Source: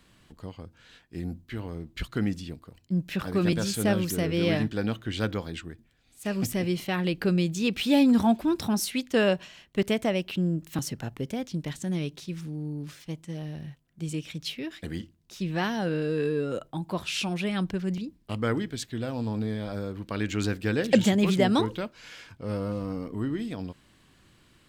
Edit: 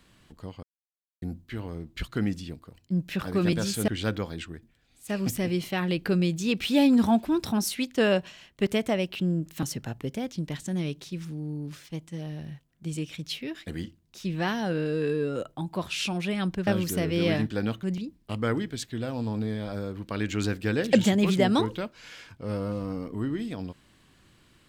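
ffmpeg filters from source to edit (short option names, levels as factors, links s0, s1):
-filter_complex "[0:a]asplit=6[s0][s1][s2][s3][s4][s5];[s0]atrim=end=0.63,asetpts=PTS-STARTPTS,afade=t=out:st=0.626:d=0.004:c=hsin[s6];[s1]atrim=start=0.63:end=1.22,asetpts=PTS-STARTPTS,volume=0[s7];[s2]atrim=start=1.22:end=3.882,asetpts=PTS-STARTPTS,afade=t=in:d=0.004:c=hsin[s8];[s3]atrim=start=5.038:end=17.832[s9];[s4]atrim=start=3.878:end=5.042[s10];[s5]atrim=start=17.828[s11];[s6][s7][s8]concat=n=3:v=0:a=1[s12];[s12][s9]acrossfade=d=0.004:c1=hsin:c2=hsin[s13];[s13][s10]acrossfade=d=0.004:c1=hsin:c2=hsin[s14];[s14][s11]acrossfade=d=0.004:c1=hsin:c2=hsin"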